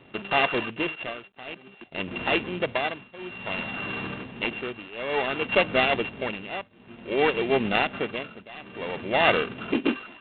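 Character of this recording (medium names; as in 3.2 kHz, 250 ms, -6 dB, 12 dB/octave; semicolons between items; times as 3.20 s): a buzz of ramps at a fixed pitch in blocks of 16 samples; tremolo triangle 0.56 Hz, depth 95%; G.726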